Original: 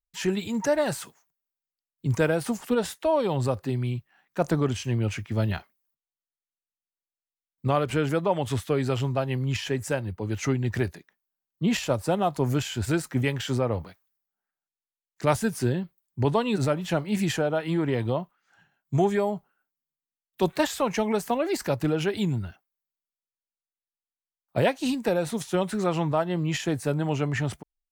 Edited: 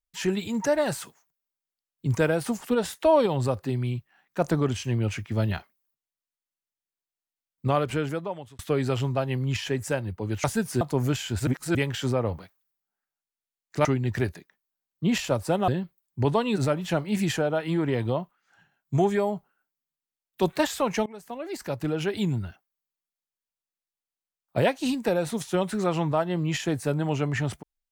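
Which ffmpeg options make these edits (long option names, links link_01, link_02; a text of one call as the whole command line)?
ffmpeg -i in.wav -filter_complex "[0:a]asplit=11[link_01][link_02][link_03][link_04][link_05][link_06][link_07][link_08][link_09][link_10][link_11];[link_01]atrim=end=2.932[link_12];[link_02]atrim=start=2.928:end=3.262,asetpts=PTS-STARTPTS,volume=4dB[link_13];[link_03]atrim=start=3.258:end=8.59,asetpts=PTS-STARTPTS,afade=type=out:start_time=4.542:duration=0.79[link_14];[link_04]atrim=start=8.59:end=10.442,asetpts=PTS-STARTPTS,afade=type=in:duration=0.004:curve=hsin[link_15];[link_05]atrim=start=15.308:end=15.682[link_16];[link_06]atrim=start=12.268:end=12.932[link_17];[link_07]atrim=start=12.928:end=13.212,asetpts=PTS-STARTPTS,areverse[link_18];[link_08]atrim=start=13.208:end=15.312[link_19];[link_09]atrim=start=10.438:end=12.272[link_20];[link_10]atrim=start=15.678:end=21.06,asetpts=PTS-STARTPTS,afade=type=out:start_time=5.378:duration=0.004:curve=hsin:silence=0.0707946[link_21];[link_11]atrim=start=21.06,asetpts=PTS-STARTPTS,afade=type=in:duration=1.2:silence=0.0707946[link_22];[link_12][link_13]acrossfade=duration=0.004:curve1=hsin:curve2=hsin[link_23];[link_14][link_15]concat=n=2:v=0:a=1[link_24];[link_23][link_24]acrossfade=duration=0.004:curve1=hsin:curve2=hsin[link_25];[link_25][link_16]acrossfade=duration=0.004:curve1=hsin:curve2=hsin[link_26];[link_26][link_17]acrossfade=duration=0.004:curve1=hsin:curve2=hsin[link_27];[link_27][link_18]acrossfade=duration=0.004:curve1=hsin:curve2=hsin[link_28];[link_28][link_19]acrossfade=duration=0.004:curve1=hsin:curve2=hsin[link_29];[link_29][link_20]acrossfade=duration=0.004:curve1=hsin:curve2=hsin[link_30];[link_21][link_22]concat=n=2:v=0:a=1[link_31];[link_30][link_31]acrossfade=duration=0.004:curve1=hsin:curve2=hsin" out.wav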